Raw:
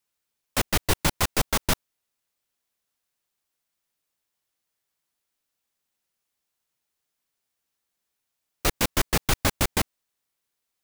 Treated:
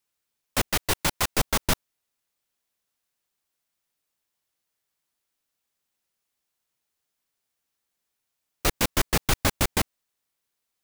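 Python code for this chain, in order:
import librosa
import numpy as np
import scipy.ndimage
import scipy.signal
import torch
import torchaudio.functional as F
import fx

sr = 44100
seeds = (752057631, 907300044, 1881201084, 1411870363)

y = fx.low_shelf(x, sr, hz=390.0, db=-5.5, at=(0.72, 1.32))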